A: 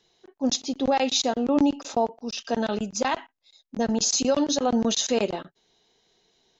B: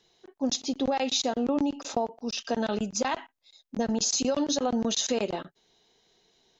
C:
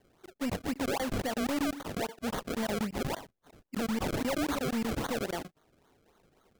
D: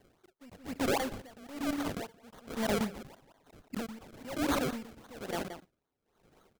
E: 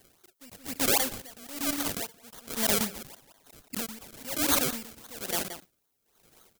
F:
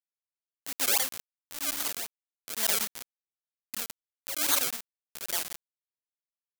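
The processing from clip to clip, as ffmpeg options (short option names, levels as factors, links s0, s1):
-af "acompressor=threshold=0.0708:ratio=6"
-af "alimiter=limit=0.0944:level=0:latency=1:release=150,acrusher=samples=33:mix=1:aa=0.000001:lfo=1:lforange=33:lforate=3.7,asoftclip=type=hard:threshold=0.0422"
-filter_complex "[0:a]asplit=2[s0][s1];[s1]adelay=174.9,volume=0.316,highshelf=f=4000:g=-3.94[s2];[s0][s2]amix=inputs=2:normalize=0,aeval=exprs='val(0)*pow(10,-24*(0.5-0.5*cos(2*PI*1.1*n/s))/20)':c=same,volume=1.41"
-af "crystalizer=i=5.5:c=0,volume=0.891"
-af "acrusher=bits=3:mix=0:aa=0.000001"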